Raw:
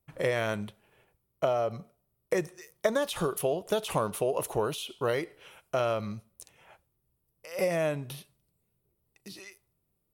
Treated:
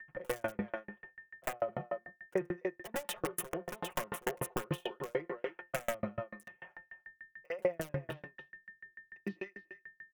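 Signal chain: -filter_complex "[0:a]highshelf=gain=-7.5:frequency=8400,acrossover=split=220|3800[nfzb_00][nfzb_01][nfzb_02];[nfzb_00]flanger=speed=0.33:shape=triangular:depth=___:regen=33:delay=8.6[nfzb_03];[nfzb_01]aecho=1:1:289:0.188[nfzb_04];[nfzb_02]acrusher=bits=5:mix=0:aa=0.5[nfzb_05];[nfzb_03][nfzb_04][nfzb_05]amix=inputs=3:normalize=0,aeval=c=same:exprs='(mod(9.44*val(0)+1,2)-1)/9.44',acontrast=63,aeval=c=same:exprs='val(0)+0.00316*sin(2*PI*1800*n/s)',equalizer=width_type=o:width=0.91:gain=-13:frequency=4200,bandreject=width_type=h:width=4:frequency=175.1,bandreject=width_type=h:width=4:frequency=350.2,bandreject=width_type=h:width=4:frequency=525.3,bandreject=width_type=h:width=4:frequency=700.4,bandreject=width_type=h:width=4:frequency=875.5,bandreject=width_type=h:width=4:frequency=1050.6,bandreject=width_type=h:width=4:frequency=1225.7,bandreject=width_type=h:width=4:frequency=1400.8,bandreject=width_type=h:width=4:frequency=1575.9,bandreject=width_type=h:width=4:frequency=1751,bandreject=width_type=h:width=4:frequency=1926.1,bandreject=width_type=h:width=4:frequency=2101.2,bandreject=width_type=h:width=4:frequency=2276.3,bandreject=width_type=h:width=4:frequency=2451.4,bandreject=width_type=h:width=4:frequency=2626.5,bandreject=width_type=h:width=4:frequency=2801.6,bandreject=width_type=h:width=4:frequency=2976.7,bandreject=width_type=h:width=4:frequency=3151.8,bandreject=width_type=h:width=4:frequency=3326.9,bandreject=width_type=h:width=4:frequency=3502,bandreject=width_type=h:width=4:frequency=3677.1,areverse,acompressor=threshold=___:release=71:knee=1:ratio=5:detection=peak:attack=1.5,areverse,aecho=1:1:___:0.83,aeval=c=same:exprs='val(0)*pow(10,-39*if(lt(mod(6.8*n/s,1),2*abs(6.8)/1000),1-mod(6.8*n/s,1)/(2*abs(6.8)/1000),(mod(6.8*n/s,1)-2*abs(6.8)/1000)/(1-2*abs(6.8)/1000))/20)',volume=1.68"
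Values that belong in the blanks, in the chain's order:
6.5, 0.0251, 5.6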